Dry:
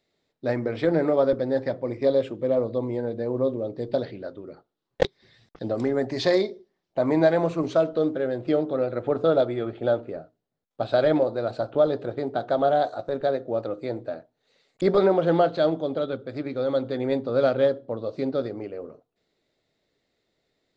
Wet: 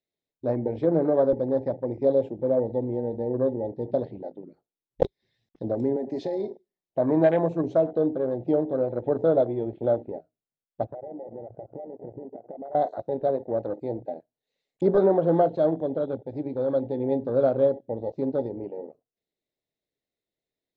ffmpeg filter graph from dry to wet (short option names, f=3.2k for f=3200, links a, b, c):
-filter_complex "[0:a]asettb=1/sr,asplit=3[a][b][c];[a]atrim=end=5.964[d];[b]atrim=start=5.96:end=6.48,asetpts=PTS-STARTPTS,afade=t=in:d=0.004:c=qsin,afade=t=out:st=0.516:d=0.004:c=qsin,highpass=f=170:w=0.5412,highpass=f=170:w=1.3066,acompressor=threshold=-23dB:ratio=16:attack=3.2:release=140:knee=1:detection=peak[e];[c]atrim=start=6.476[f];[d][e]acrossfade=d=0.004:c1=hsin:c2=qsin[g];[g][f]acrossfade=d=0.004:c1=qsin:c2=hsin,asettb=1/sr,asplit=3[h][i][j];[h]atrim=end=10.844[k];[i]atrim=start=10.84:end=12.75,asetpts=PTS-STARTPTS,afade=t=in:d=0.004:c=qsin,afade=t=out:st=1.906:d=0.004:c=qsin,lowpass=f=1.2k:w=0.5412,lowpass=f=1.2k:w=1.3066,acompressor=threshold=-33dB:ratio=16:attack=3.2:release=140:knee=1:detection=peak[l];[j]atrim=start=12.746[m];[k][l]acrossfade=d=0.004:c1=hsin:c2=qsin[n];[n][m]acrossfade=d=0.004:c1=qsin:c2=hsin,afwtdn=0.0316,equalizer=f=1.3k:w=2.9:g=-9.5,bandreject=f=4.6k:w=15"